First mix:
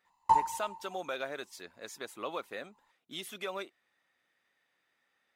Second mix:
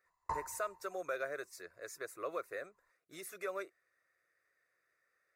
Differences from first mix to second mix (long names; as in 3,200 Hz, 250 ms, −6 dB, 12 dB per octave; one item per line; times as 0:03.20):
background: add high-frequency loss of the air 77 metres
master: add phaser with its sweep stopped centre 860 Hz, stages 6